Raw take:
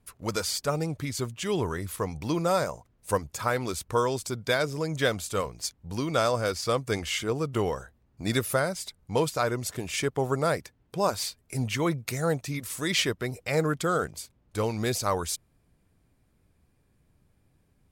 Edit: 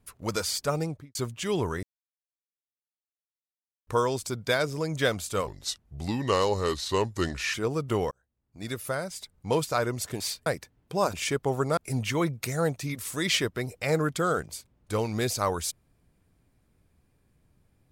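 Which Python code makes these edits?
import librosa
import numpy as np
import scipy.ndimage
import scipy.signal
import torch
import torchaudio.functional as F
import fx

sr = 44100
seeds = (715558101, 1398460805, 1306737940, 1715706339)

y = fx.studio_fade_out(x, sr, start_s=0.8, length_s=0.35)
y = fx.edit(y, sr, fx.silence(start_s=1.83, length_s=2.04),
    fx.speed_span(start_s=5.47, length_s=1.72, speed=0.83),
    fx.fade_in_span(start_s=7.76, length_s=1.51),
    fx.swap(start_s=9.85, length_s=0.64, other_s=11.16, other_length_s=0.26), tone=tone)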